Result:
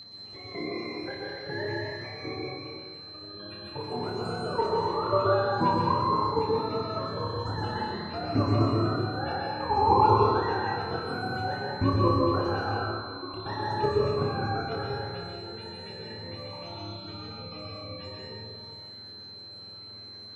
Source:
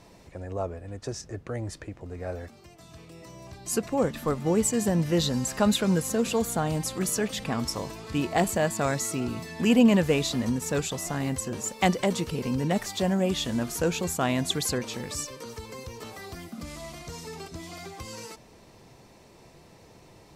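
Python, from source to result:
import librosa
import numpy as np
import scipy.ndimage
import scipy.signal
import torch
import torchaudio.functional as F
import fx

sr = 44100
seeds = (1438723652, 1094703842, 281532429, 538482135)

p1 = fx.octave_mirror(x, sr, pivot_hz=450.0)
p2 = fx.level_steps(p1, sr, step_db=12)
p3 = fx.vowel_filter(p2, sr, vowel='u', at=(12.76, 13.34))
p4 = p3 + 10.0 ** (-42.0 / 20.0) * np.sin(2.0 * np.pi * 4100.0 * np.arange(len(p3)) / sr)
p5 = p4 + fx.room_flutter(p4, sr, wall_m=5.0, rt60_s=0.39, dry=0)
y = fx.rev_plate(p5, sr, seeds[0], rt60_s=1.8, hf_ratio=0.6, predelay_ms=110, drr_db=-3.0)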